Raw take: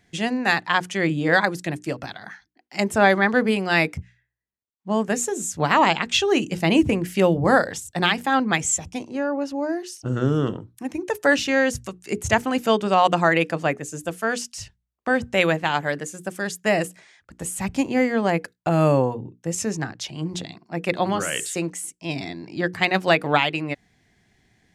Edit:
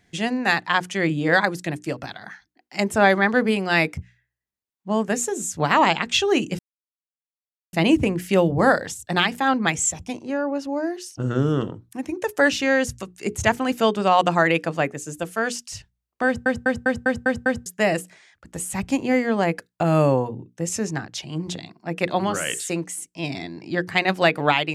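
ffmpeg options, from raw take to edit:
-filter_complex "[0:a]asplit=9[s0][s1][s2][s3][s4][s5][s6][s7][s8];[s0]atrim=end=6.59,asetpts=PTS-STARTPTS,afade=t=out:st=6.586:d=0.004:c=hsin,apad=pad_dur=1.14[s9];[s1]atrim=start=6.59:end=15.322,asetpts=PTS-STARTPTS,afade=t=in:d=0.004:c=hsin[s10];[s2]atrim=start=15.118:end=15.322[s11];[s3]atrim=start=15.118:end=15.322[s12];[s4]atrim=start=15.118:end=15.322[s13];[s5]atrim=start=15.118:end=15.322[s14];[s6]atrim=start=15.118:end=15.322[s15];[s7]atrim=start=15.118:end=15.322[s16];[s8]atrim=start=16.518[s17];[s9][s10]concat=n=2:v=0:a=1[s18];[s18][s11]acrossfade=d=0.004:c1=hsin:c2=hsin[s19];[s19][s12]acrossfade=d=0.004:c1=hsin:c2=hsin[s20];[s20][s13]acrossfade=d=0.004:c1=hsin:c2=hsin[s21];[s21][s14]acrossfade=d=0.004:c1=hsin:c2=hsin[s22];[s22][s15]acrossfade=d=0.004:c1=hsin:c2=hsin[s23];[s23][s16]acrossfade=d=0.004:c1=hsin:c2=hsin[s24];[s24][s17]acrossfade=d=0.004:c1=hsin:c2=hsin"

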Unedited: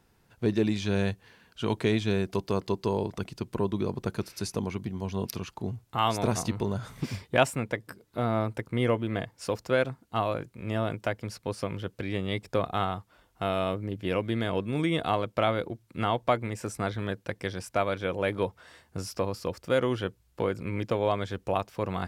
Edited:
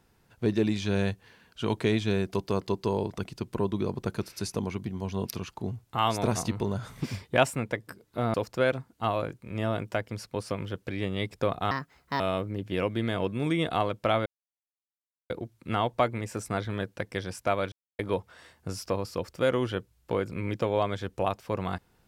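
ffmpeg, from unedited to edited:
-filter_complex "[0:a]asplit=7[s0][s1][s2][s3][s4][s5][s6];[s0]atrim=end=8.342[s7];[s1]atrim=start=9.458:end=12.834[s8];[s2]atrim=start=12.83:end=13.53,asetpts=PTS-STARTPTS,asetrate=63063,aresample=44100,atrim=end_sample=21587,asetpts=PTS-STARTPTS[s9];[s3]atrim=start=13.526:end=15.59,asetpts=PTS-STARTPTS,afade=t=out:st=2.06:d=0.004:c=hsin,apad=pad_dur=1.04[s10];[s4]atrim=start=15.59:end=18.01,asetpts=PTS-STARTPTS,afade=t=in:d=0.004:c=hsin,afade=t=out:st=2.416:d=0.004:c=hsin[s11];[s5]atrim=start=18.01:end=18.28,asetpts=PTS-STARTPTS,volume=0[s12];[s6]atrim=start=18.28,asetpts=PTS-STARTPTS,afade=t=in:d=0.004:c=hsin[s13];[s7][s8]acrossfade=d=0.004:c1=hsin:c2=hsin[s14];[s14][s9]acrossfade=d=0.004:c1=hsin:c2=hsin[s15];[s10][s11][s12][s13]concat=n=4:v=0:a=1[s16];[s15][s16]acrossfade=d=0.004:c1=hsin:c2=hsin"

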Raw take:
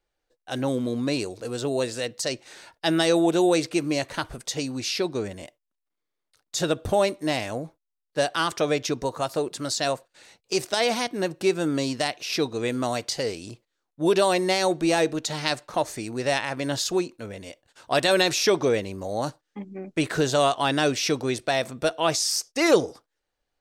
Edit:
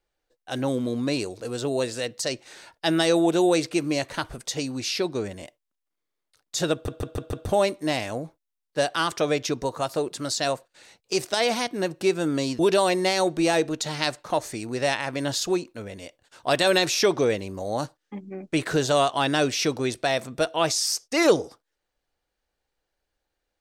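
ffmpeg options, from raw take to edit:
-filter_complex "[0:a]asplit=6[s0][s1][s2][s3][s4][s5];[s0]atrim=end=6.882[s6];[s1]atrim=start=6.728:end=6.882[s7];[s2]atrim=start=6.728:end=6.882[s8];[s3]atrim=start=6.728:end=6.882[s9];[s4]atrim=start=6.728:end=11.992[s10];[s5]atrim=start=14.028[s11];[s6][s7]acrossfade=d=0.004:c1=hsin:c2=hsin[s12];[s12][s8]acrossfade=d=0.004:c1=hsin:c2=hsin[s13];[s13][s9]acrossfade=d=0.004:c1=hsin:c2=hsin[s14];[s14][s10]acrossfade=d=0.004:c1=hsin:c2=hsin[s15];[s15][s11]acrossfade=d=0.004:c1=hsin:c2=hsin"

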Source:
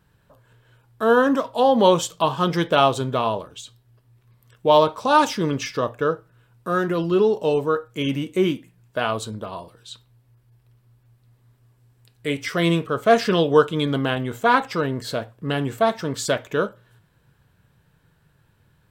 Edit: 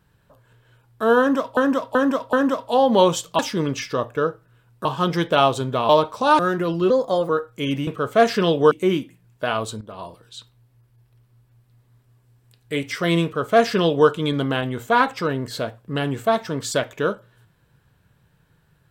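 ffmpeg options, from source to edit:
-filter_complex "[0:a]asplit=13[s0][s1][s2][s3][s4][s5][s6][s7][s8][s9][s10][s11][s12];[s0]atrim=end=1.572[s13];[s1]atrim=start=1.188:end=1.572[s14];[s2]atrim=start=1.188:end=1.572[s15];[s3]atrim=start=1.188:end=2.252[s16];[s4]atrim=start=5.228:end=6.692[s17];[s5]atrim=start=2.248:end=3.292[s18];[s6]atrim=start=4.728:end=5.232[s19];[s7]atrim=start=6.688:end=7.204[s20];[s8]atrim=start=7.2:end=7.67,asetpts=PTS-STARTPTS,asetrate=52920,aresample=44100,atrim=end_sample=17272,asetpts=PTS-STARTPTS[s21];[s9]atrim=start=7.666:end=8.252[s22];[s10]atrim=start=12.778:end=13.622[s23];[s11]atrim=start=8.248:end=9.35,asetpts=PTS-STARTPTS,afade=t=out:st=1.098:d=0.004:c=hsin:silence=0.237137[s24];[s12]atrim=start=9.35,asetpts=PTS-STARTPTS,afade=t=in:d=0.25:silence=0.237137[s25];[s13][s14]acrossfade=d=0.004:c1=hsin:c2=hsin[s26];[s26][s15]acrossfade=d=0.004:c1=hsin:c2=hsin[s27];[s27][s16]acrossfade=d=0.004:c1=hsin:c2=hsin[s28];[s28][s17]acrossfade=d=0.004:c1=hsin:c2=hsin[s29];[s29][s18]acrossfade=d=0.004:c1=hsin:c2=hsin[s30];[s30][s19]acrossfade=d=0.004:c1=hsin:c2=hsin[s31];[s31][s20]acrossfade=d=0.004:c1=hsin:c2=hsin[s32];[s32][s21]acrossfade=d=0.004:c1=hsin:c2=hsin[s33];[s33][s22]acrossfade=d=0.004:c1=hsin:c2=hsin[s34];[s34][s23]acrossfade=d=0.004:c1=hsin:c2=hsin[s35];[s24][s25]concat=n=2:v=0:a=1[s36];[s35][s36]acrossfade=d=0.004:c1=hsin:c2=hsin"

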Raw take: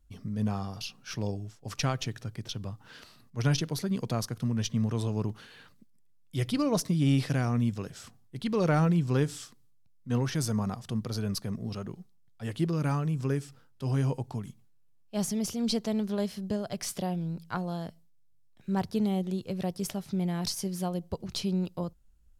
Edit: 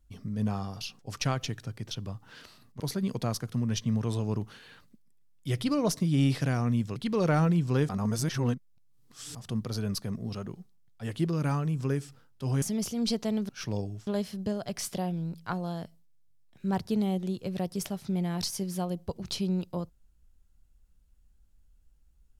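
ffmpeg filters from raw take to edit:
-filter_complex "[0:a]asplit=9[s0][s1][s2][s3][s4][s5][s6][s7][s8];[s0]atrim=end=0.992[s9];[s1]atrim=start=1.568:end=3.382[s10];[s2]atrim=start=3.678:end=7.842[s11];[s3]atrim=start=8.358:end=9.292[s12];[s4]atrim=start=9.288:end=10.752,asetpts=PTS-STARTPTS,areverse[s13];[s5]atrim=start=10.748:end=14.022[s14];[s6]atrim=start=15.238:end=16.112[s15];[s7]atrim=start=0.988:end=1.572[s16];[s8]atrim=start=16.108[s17];[s9][s10]acrossfade=d=0.004:c1=hsin:c2=hsin[s18];[s18][s11]acrossfade=d=0.004:c1=hsin:c2=hsin[s19];[s19][s12]acrossfade=d=0.004:c1=hsin:c2=hsin[s20];[s20][s13]acrossfade=d=0.004:c1=hsin:c2=hsin[s21];[s21][s14]acrossfade=d=0.004:c1=hsin:c2=hsin[s22];[s22][s15]acrossfade=d=0.004:c1=hsin:c2=hsin[s23];[s23][s16]acrossfade=d=0.004:c1=hsin:c2=hsin[s24];[s24][s17]acrossfade=d=0.004:c1=hsin:c2=hsin"

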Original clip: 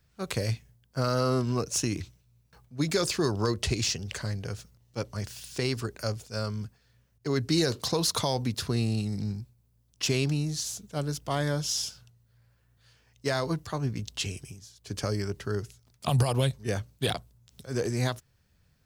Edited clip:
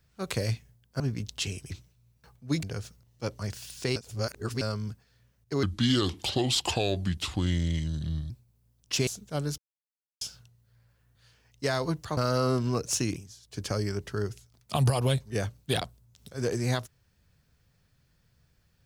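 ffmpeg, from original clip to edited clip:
-filter_complex "[0:a]asplit=13[s0][s1][s2][s3][s4][s5][s6][s7][s8][s9][s10][s11][s12];[s0]atrim=end=1.002[s13];[s1]atrim=start=13.788:end=14.492[s14];[s2]atrim=start=1.988:end=2.922[s15];[s3]atrim=start=4.368:end=5.702[s16];[s4]atrim=start=5.698:end=6.352,asetpts=PTS-STARTPTS,areverse[s17];[s5]atrim=start=6.348:end=7.374[s18];[s6]atrim=start=7.37:end=9.4,asetpts=PTS-STARTPTS,asetrate=33516,aresample=44100,atrim=end_sample=117793,asetpts=PTS-STARTPTS[s19];[s7]atrim=start=9.396:end=10.172[s20];[s8]atrim=start=10.688:end=11.2,asetpts=PTS-STARTPTS,afade=t=out:st=0.508:d=0.004:c=hsin[s21];[s9]atrim=start=11.2:end=11.83,asetpts=PTS-STARTPTS,volume=0[s22];[s10]atrim=start=11.83:end=13.792,asetpts=PTS-STARTPTS,afade=t=in:d=0.004:c=hsin[s23];[s11]atrim=start=0.998:end=1.992[s24];[s12]atrim=start=14.488[s25];[s13][s14]acrossfade=d=0.004:c1=hsin:c2=hsin[s26];[s26][s15]acrossfade=d=0.004:c1=hsin:c2=hsin[s27];[s27][s16]acrossfade=d=0.004:c1=hsin:c2=hsin[s28];[s28][s17]acrossfade=d=0.004:c1=hsin:c2=hsin[s29];[s29][s18]acrossfade=d=0.004:c1=hsin:c2=hsin[s30];[s30][s19]acrossfade=d=0.004:c1=hsin:c2=hsin[s31];[s31][s20]acrossfade=d=0.004:c1=hsin:c2=hsin[s32];[s21][s22][s23]concat=n=3:v=0:a=1[s33];[s32][s33]acrossfade=d=0.004:c1=hsin:c2=hsin[s34];[s34][s24]acrossfade=d=0.004:c1=hsin:c2=hsin[s35];[s35][s25]acrossfade=d=0.004:c1=hsin:c2=hsin"

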